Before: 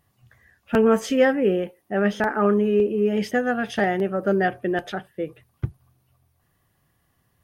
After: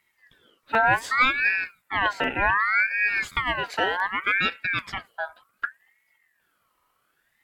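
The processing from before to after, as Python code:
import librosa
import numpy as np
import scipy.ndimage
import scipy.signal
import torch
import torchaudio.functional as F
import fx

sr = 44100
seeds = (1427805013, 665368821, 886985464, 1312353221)

y = fx.buffer_glitch(x, sr, at_s=(3.31,), block=512, repeats=4)
y = fx.ring_lfo(y, sr, carrier_hz=1600.0, swing_pct=30, hz=0.66)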